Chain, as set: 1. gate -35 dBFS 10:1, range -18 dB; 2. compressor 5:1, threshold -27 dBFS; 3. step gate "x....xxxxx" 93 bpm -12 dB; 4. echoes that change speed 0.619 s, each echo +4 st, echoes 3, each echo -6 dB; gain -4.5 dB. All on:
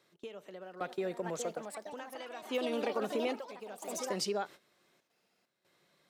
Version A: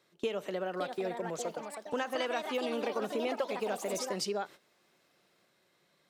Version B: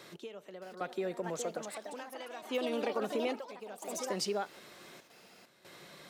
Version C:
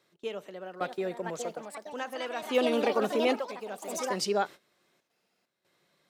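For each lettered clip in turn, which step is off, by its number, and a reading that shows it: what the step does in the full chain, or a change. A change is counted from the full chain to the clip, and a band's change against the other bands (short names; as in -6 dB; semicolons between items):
3, 2 kHz band +2.5 dB; 1, momentary loudness spread change +7 LU; 2, 8 kHz band -3.5 dB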